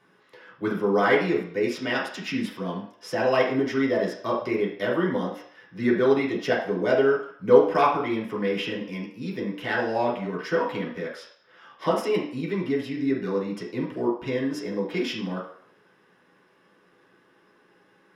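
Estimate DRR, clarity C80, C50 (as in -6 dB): -6.0 dB, 9.0 dB, 5.0 dB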